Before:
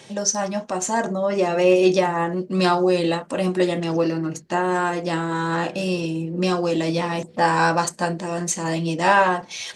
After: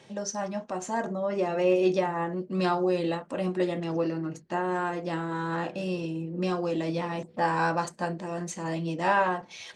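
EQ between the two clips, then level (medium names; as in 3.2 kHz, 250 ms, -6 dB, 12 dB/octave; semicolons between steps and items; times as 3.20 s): treble shelf 4.3 kHz -10.5 dB; -7.0 dB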